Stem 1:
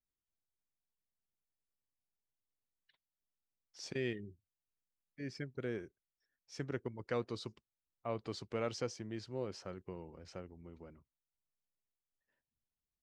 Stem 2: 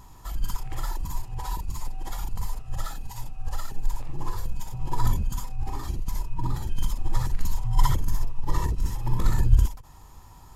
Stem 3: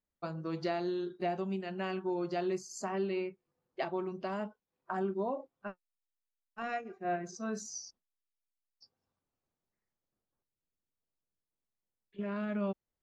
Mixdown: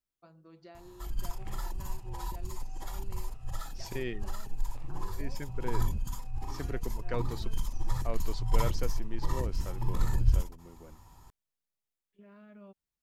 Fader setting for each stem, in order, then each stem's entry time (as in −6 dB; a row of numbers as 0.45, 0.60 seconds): +1.0, −6.5, −18.0 decibels; 0.00, 0.75, 0.00 seconds